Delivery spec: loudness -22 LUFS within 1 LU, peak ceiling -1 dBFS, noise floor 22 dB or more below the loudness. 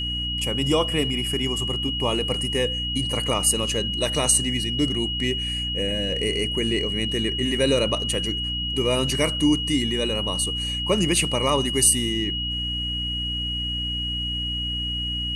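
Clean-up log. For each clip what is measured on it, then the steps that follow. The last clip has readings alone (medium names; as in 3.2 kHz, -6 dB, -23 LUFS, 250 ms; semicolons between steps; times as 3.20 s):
hum 60 Hz; highest harmonic 300 Hz; hum level -29 dBFS; steady tone 2.9 kHz; tone level -26 dBFS; loudness -22.5 LUFS; peak level -5.0 dBFS; loudness target -22.0 LUFS
-> de-hum 60 Hz, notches 5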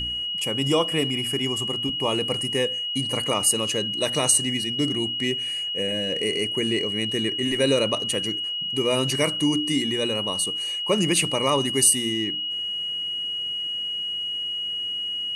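hum not found; steady tone 2.9 kHz; tone level -26 dBFS
-> band-stop 2.9 kHz, Q 30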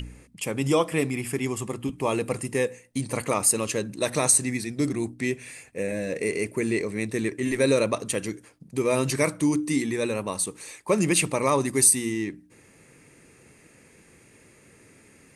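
steady tone not found; loudness -25.0 LUFS; peak level -6.0 dBFS; loudness target -22.0 LUFS
-> trim +3 dB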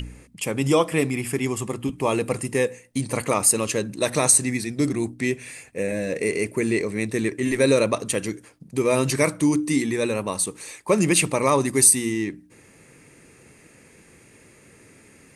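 loudness -22.0 LUFS; peak level -3.0 dBFS; noise floor -53 dBFS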